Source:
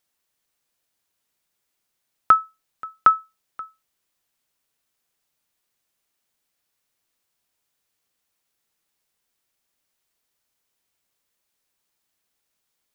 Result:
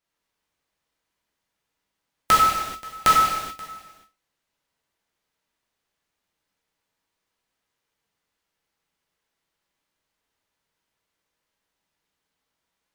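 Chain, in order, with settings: formants flattened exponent 0.1; low-pass 2.6 kHz 6 dB/octave; gated-style reverb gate 460 ms falling, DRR -6 dB; trim -3.5 dB

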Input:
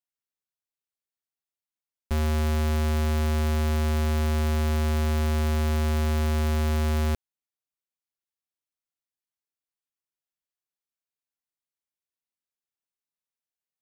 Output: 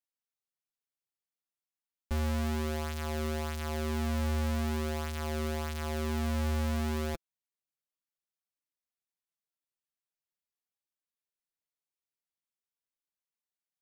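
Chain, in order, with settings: flange 0.46 Hz, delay 3.2 ms, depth 4.6 ms, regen +14%; trim -2 dB

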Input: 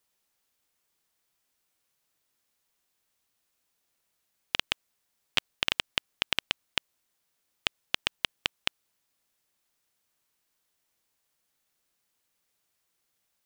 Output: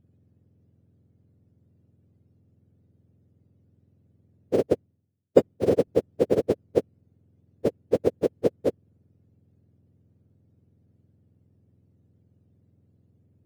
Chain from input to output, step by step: spectrum inverted on a logarithmic axis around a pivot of 1.2 kHz; graphic EQ 250/500/1000 Hz +4/+5/-7 dB; 4.66–5.88 s: three bands expanded up and down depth 100%; trim +2.5 dB

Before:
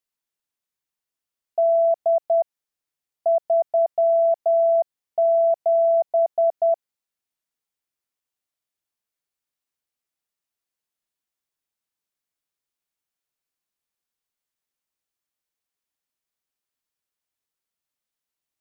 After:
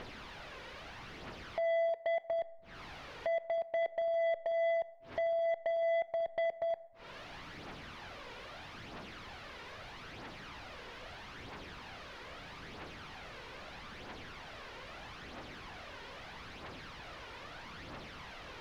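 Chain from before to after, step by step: one-bit delta coder 64 kbps, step -41.5 dBFS; dynamic bell 770 Hz, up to -5 dB, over -37 dBFS, Q 6; compression 3:1, threshold -42 dBFS, peak gain reduction 16.5 dB; hysteresis with a dead band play -46 dBFS; phaser 0.78 Hz, delay 2.2 ms, feedback 46%; hard clipper -38 dBFS, distortion -8 dB; distance through air 290 m; reverberation RT60 0.95 s, pre-delay 13 ms, DRR 16.5 dB; trim +9 dB

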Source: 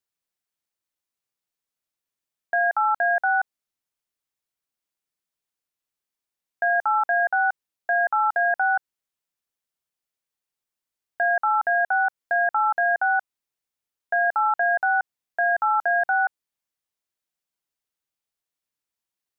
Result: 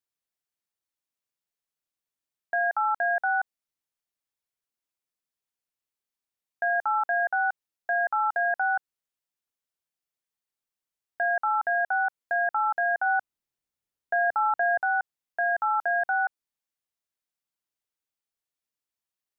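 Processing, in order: 13.06–14.80 s: bass shelf 400 Hz +8 dB; trim -4 dB

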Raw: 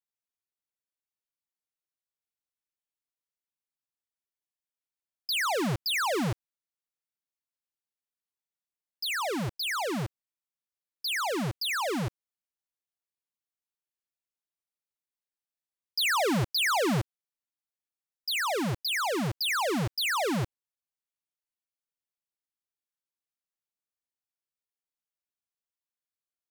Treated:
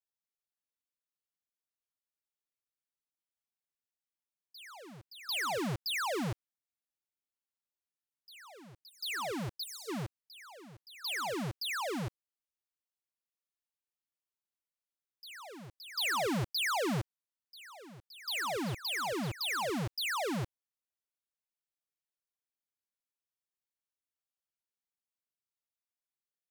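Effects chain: time-frequency box 9.57–9.89 s, 470–3600 Hz -24 dB; reverse echo 745 ms -16.5 dB; trim -6 dB

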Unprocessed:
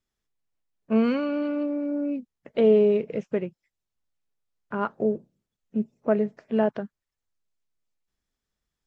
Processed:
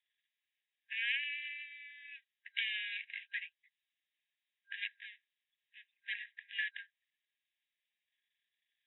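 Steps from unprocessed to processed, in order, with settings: partial rectifier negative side -7 dB; FFT band-pass 1.6–3.9 kHz; trim +8.5 dB

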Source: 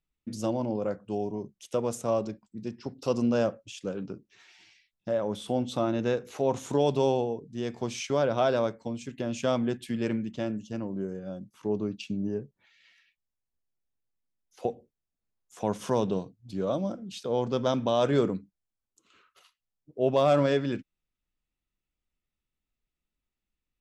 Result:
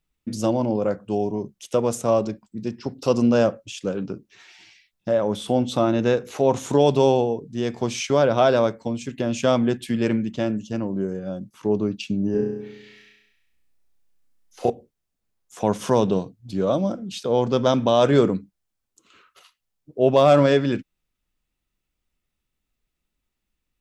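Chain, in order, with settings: 12.31–14.70 s: flutter echo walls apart 5.7 m, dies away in 0.95 s; trim +7.5 dB

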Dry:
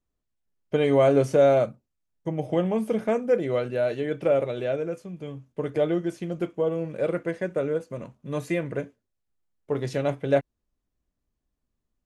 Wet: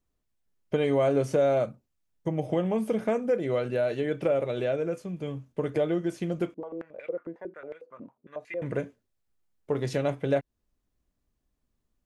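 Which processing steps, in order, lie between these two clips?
compression 2:1, threshold -29 dBFS, peak gain reduction 8.5 dB; 6.54–8.62 s: step-sequenced band-pass 11 Hz 270–2200 Hz; trim +2.5 dB

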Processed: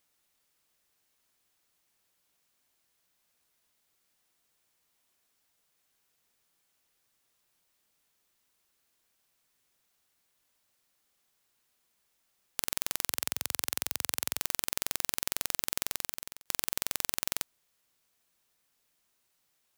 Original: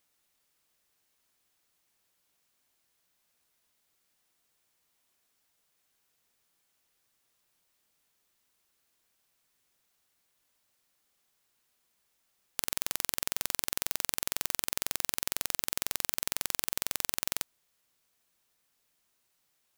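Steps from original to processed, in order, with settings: 13.07–14.40 s: high-pass 70 Hz 24 dB/octave; 15.82–16.46 s: fade out

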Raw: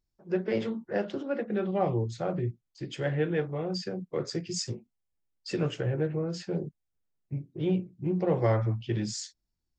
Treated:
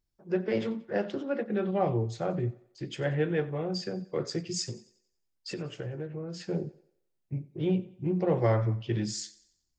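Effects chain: 4.69–6.41 s: compression 4:1, threshold -35 dBFS, peak gain reduction 10 dB; thinning echo 91 ms, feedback 44%, high-pass 230 Hz, level -19 dB

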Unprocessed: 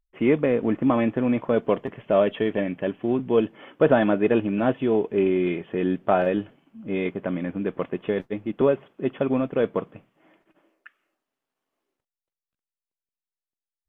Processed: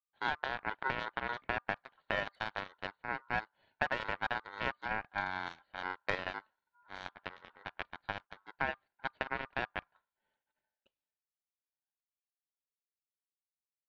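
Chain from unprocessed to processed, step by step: Chebyshev shaper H 3 -18 dB, 7 -20 dB, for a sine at -5 dBFS; ring modulator 1.2 kHz; compression 6:1, threshold -28 dBFS, peak gain reduction 12 dB; trim -1.5 dB

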